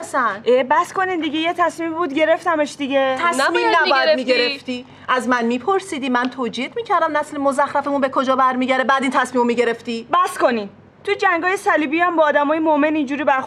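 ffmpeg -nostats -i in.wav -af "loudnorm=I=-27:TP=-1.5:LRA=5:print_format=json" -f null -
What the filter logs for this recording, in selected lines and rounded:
"input_i" : "-17.8",
"input_tp" : "-1.5",
"input_lra" : "1.7",
"input_thresh" : "-28.0",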